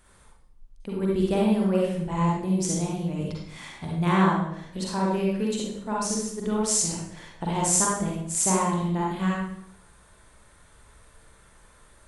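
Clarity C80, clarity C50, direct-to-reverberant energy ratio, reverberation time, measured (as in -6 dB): 4.0 dB, -1.0 dB, -3.5 dB, 0.65 s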